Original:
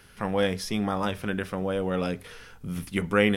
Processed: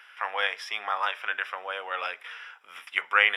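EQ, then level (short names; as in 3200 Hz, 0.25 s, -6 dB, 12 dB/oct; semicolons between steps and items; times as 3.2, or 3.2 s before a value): polynomial smoothing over 25 samples; Bessel high-pass 1300 Hz, order 4; +8.5 dB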